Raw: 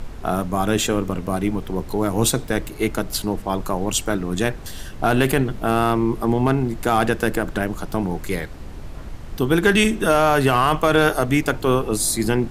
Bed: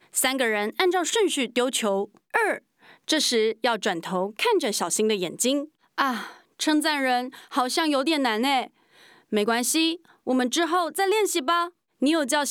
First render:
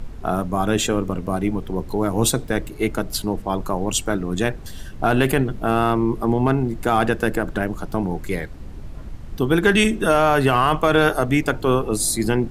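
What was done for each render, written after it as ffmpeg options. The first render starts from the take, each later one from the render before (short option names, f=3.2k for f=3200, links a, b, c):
-af "afftdn=nr=6:nf=-35"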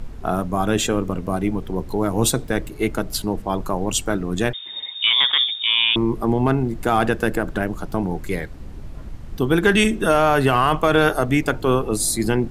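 -filter_complex "[0:a]asettb=1/sr,asplit=3[a][b][c];[a]atrim=end=4.534[d];[b]atrim=start=4.53:end=5.96,asetpts=PTS-STARTPTS,afade=t=in:d=0.004:c=qsin,afade=t=out:st=1.426:d=0.004:c=qsin,lowpass=f=3.1k:t=q:w=0.5098,lowpass=f=3.1k:t=q:w=0.6013,lowpass=f=3.1k:t=q:w=0.9,lowpass=f=3.1k:t=q:w=2.563,afreqshift=-3700[e];[c]atrim=start=5.956[f];[d][e]acrossfade=d=0.004:c1=hsin:c2=qsin[g];[g][f]acrossfade=d=0.004:c1=qsin:c2=hsin"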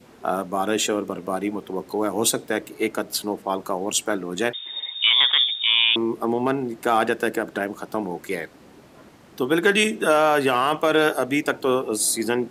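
-af "highpass=300,adynamicequalizer=threshold=0.0224:dfrequency=1100:dqfactor=1.3:tfrequency=1100:tqfactor=1.3:attack=5:release=100:ratio=0.375:range=2.5:mode=cutabove:tftype=bell"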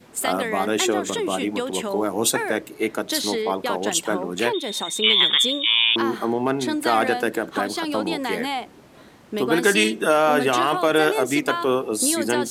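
-filter_complex "[1:a]volume=-4dB[a];[0:a][a]amix=inputs=2:normalize=0"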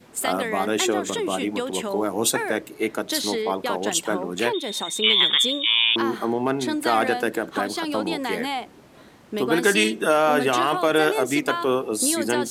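-af "volume=-1dB"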